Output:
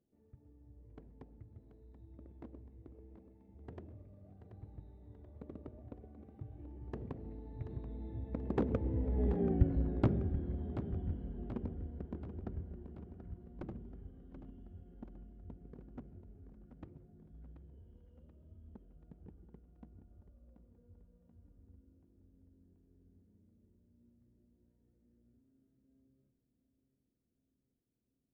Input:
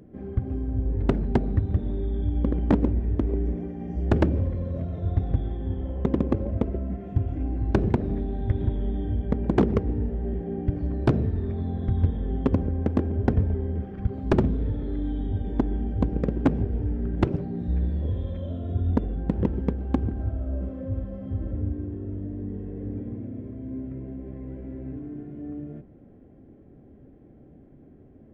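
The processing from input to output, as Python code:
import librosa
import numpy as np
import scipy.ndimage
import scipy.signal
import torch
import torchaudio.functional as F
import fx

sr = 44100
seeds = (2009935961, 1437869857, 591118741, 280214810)

p1 = fx.doppler_pass(x, sr, speed_mps=36, closest_m=9.7, pass_at_s=9.44)
p2 = fx.high_shelf(p1, sr, hz=3000.0, db=-6.0)
p3 = p2 + fx.echo_feedback(p2, sr, ms=732, feedback_pct=57, wet_db=-11, dry=0)
y = p3 * librosa.db_to_amplitude(-1.5)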